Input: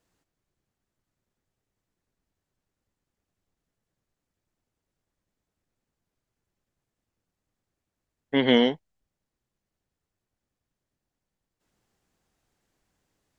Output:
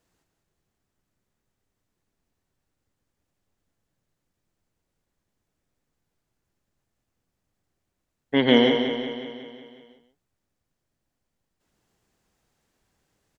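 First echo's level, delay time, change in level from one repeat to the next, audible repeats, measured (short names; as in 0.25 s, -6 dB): -9.5 dB, 0.143 s, no steady repeat, 11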